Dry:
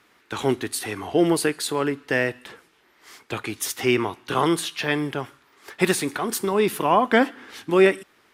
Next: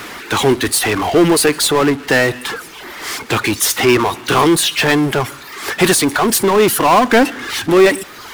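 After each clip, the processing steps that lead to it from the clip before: reverb removal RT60 0.62 s; power-law curve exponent 0.5; gain +3 dB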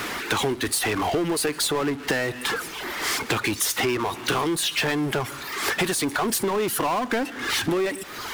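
compressor 10:1, threshold -22 dBFS, peak gain reduction 16 dB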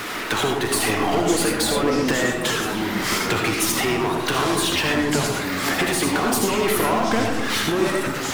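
reverb RT60 0.95 s, pre-delay 35 ms, DRR 0.5 dB; echoes that change speed 0.311 s, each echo -5 st, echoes 3, each echo -6 dB

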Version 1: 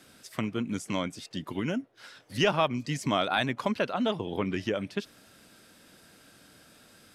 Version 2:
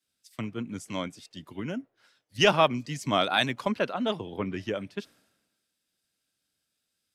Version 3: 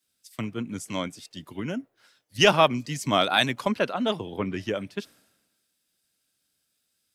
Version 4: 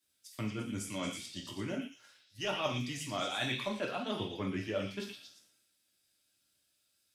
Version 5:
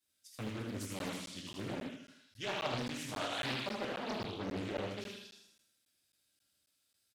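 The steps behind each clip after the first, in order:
three-band expander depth 100%; gain -1.5 dB
high shelf 7900 Hz +7 dB; gain +2.5 dB
reverse; compressor 6:1, threshold -30 dBFS, peak gain reduction 16.5 dB; reverse; delay with a stepping band-pass 0.115 s, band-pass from 3100 Hz, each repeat 0.7 oct, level -1.5 dB; non-linear reverb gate 0.16 s falling, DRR 0 dB; gain -5 dB
on a send: feedback echo 78 ms, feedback 48%, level -3.5 dB; on the sum: crackling interface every 0.27 s, samples 512, zero, from 0.99; Doppler distortion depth 0.86 ms; gain -4 dB

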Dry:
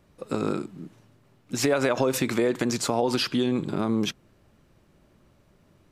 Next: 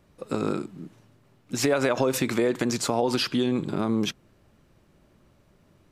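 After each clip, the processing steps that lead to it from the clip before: nothing audible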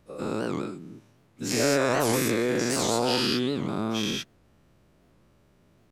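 spectral dilation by 0.24 s; record warp 78 rpm, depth 250 cents; gain -7 dB

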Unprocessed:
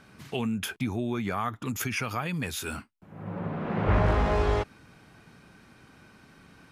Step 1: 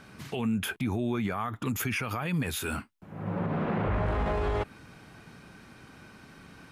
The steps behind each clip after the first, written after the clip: dynamic EQ 5600 Hz, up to -7 dB, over -54 dBFS, Q 1.4; limiter -24.5 dBFS, peak gain reduction 10 dB; gain +3.5 dB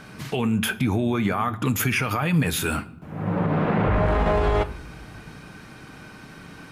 reverb RT60 0.95 s, pre-delay 7 ms, DRR 11 dB; gain +7.5 dB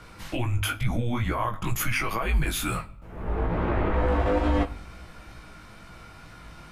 frequency shift -120 Hz; chorus 2.2 Hz, delay 16 ms, depth 4.2 ms

